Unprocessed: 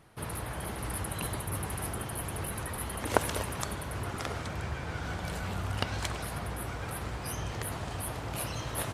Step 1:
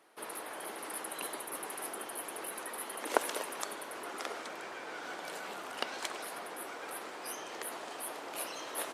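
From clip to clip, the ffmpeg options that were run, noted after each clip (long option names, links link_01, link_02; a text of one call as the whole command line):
ffmpeg -i in.wav -af "highpass=frequency=310:width=0.5412,highpass=frequency=310:width=1.3066,volume=-2.5dB" out.wav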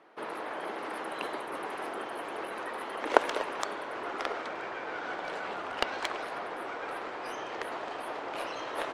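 ffmpeg -i in.wav -af "adynamicsmooth=sensitivity=2:basefreq=2900,asubboost=boost=5:cutoff=80,volume=7.5dB" out.wav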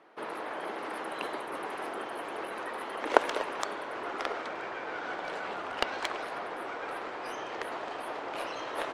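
ffmpeg -i in.wav -af anull out.wav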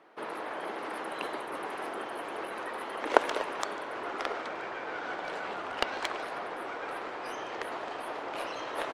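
ffmpeg -i in.wav -af "aecho=1:1:147:0.0794" out.wav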